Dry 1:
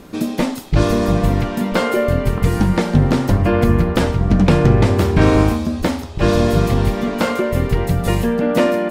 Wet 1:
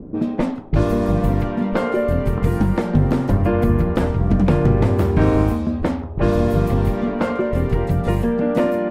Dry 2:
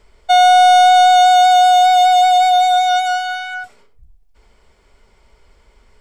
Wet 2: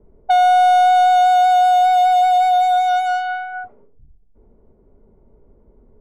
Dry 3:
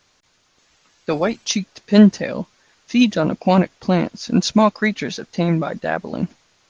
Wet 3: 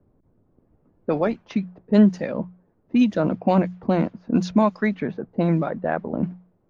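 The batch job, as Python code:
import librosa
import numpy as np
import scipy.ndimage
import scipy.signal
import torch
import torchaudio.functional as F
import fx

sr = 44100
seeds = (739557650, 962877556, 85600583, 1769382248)

y = fx.env_lowpass(x, sr, base_hz=320.0, full_db=-12.0)
y = fx.peak_eq(y, sr, hz=5300.0, db=-11.0, octaves=2.6)
y = fx.hum_notches(y, sr, base_hz=60, count=3)
y = fx.band_squash(y, sr, depth_pct=40)
y = F.gain(torch.from_numpy(y), -2.0).numpy()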